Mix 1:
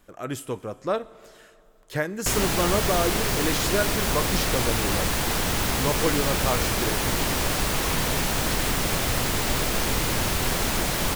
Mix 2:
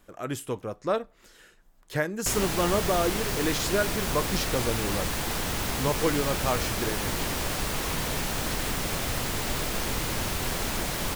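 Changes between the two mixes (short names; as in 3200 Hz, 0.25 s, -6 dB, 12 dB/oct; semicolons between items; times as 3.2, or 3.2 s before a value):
background -4.0 dB; reverb: off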